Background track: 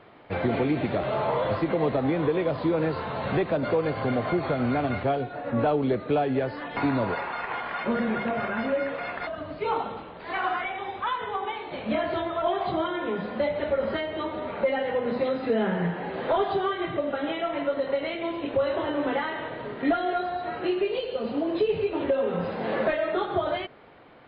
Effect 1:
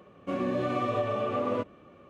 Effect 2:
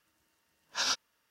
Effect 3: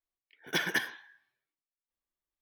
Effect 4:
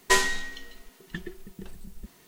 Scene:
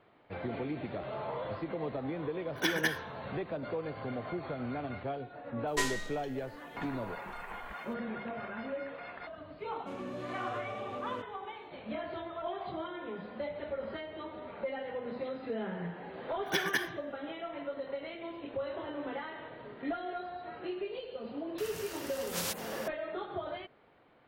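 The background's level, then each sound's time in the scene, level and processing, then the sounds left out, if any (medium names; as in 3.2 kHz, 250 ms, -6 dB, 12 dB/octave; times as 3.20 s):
background track -12 dB
2.09 s: add 3 -1 dB
5.67 s: add 4 -10.5 dB
9.59 s: add 1 -11.5 dB + treble shelf 4.4 kHz +10 dB
15.99 s: add 3 -1.5 dB
21.58 s: add 2 -6 dB + spectrum-flattening compressor 10:1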